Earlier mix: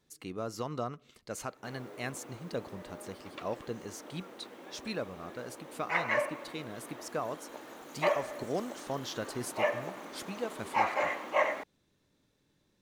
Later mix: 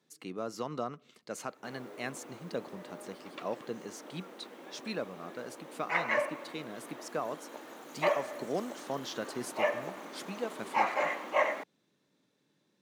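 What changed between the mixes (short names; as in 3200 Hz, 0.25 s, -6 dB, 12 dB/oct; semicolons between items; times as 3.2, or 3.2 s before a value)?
speech: add high shelf 9900 Hz -6.5 dB; master: add HPF 150 Hz 24 dB/oct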